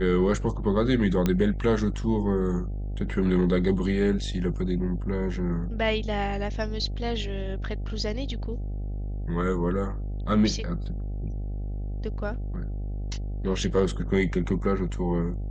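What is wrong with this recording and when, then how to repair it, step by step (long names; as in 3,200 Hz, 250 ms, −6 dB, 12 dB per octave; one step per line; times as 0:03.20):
mains buzz 50 Hz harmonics 16 −31 dBFS
0:01.26: click −11 dBFS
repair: click removal
hum removal 50 Hz, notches 16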